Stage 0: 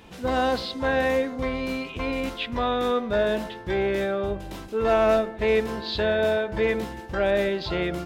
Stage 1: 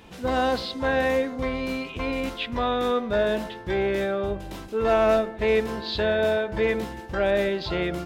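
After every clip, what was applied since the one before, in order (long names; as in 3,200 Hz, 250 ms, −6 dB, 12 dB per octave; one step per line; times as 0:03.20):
no processing that can be heard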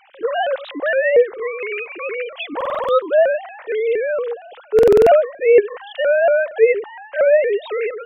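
three sine waves on the formant tracks
buffer that repeats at 0:02.56/0:04.74, samples 2,048, times 6
pitch modulation by a square or saw wave saw up 4.3 Hz, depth 160 cents
level +7.5 dB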